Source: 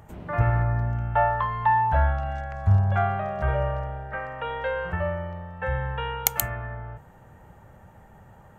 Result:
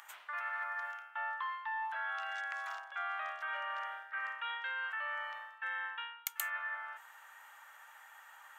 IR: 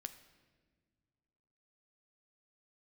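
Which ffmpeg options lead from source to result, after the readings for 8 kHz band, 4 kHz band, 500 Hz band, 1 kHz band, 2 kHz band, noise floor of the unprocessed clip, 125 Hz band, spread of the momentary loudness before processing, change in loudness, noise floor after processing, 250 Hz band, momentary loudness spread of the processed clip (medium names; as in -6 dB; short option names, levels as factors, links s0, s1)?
-14.5 dB, -5.0 dB, -25.5 dB, -13.5 dB, -3.5 dB, -51 dBFS, under -40 dB, 12 LU, -13.0 dB, -58 dBFS, under -40 dB, 17 LU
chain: -af "highpass=f=1200:w=0.5412,highpass=f=1200:w=1.3066,equalizer=f=3400:w=4.5:g=3.5,areverse,acompressor=threshold=0.00708:ratio=8,areverse,volume=2.11"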